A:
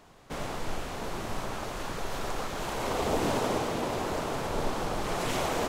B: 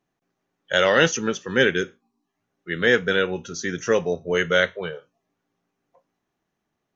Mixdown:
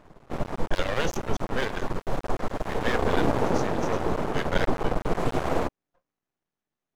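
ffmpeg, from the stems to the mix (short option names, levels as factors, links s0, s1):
-filter_complex "[0:a]tiltshelf=f=1300:g=9,bandreject=f=50:t=h:w=6,bandreject=f=100:t=h:w=6,bandreject=f=150:t=h:w=6,bandreject=f=200:t=h:w=6,bandreject=f=250:t=h:w=6,bandreject=f=300:t=h:w=6,bandreject=f=350:t=h:w=6,bandreject=f=400:t=h:w=6,volume=1.33[s0];[1:a]volume=0.447[s1];[s0][s1]amix=inputs=2:normalize=0,aeval=exprs='max(val(0),0)':c=same"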